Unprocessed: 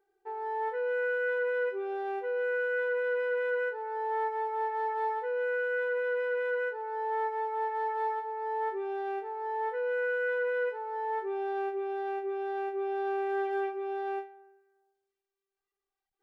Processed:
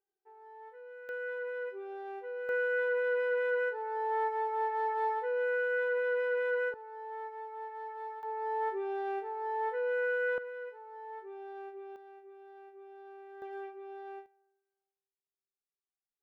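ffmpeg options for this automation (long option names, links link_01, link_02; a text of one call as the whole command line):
ffmpeg -i in.wav -af "asetnsamples=nb_out_samples=441:pad=0,asendcmd='1.09 volume volume -8dB;2.49 volume volume -0.5dB;6.74 volume volume -10.5dB;8.23 volume volume -1dB;10.38 volume volume -12dB;11.96 volume volume -19dB;13.42 volume volume -11dB;14.26 volume volume -18dB',volume=-18dB" out.wav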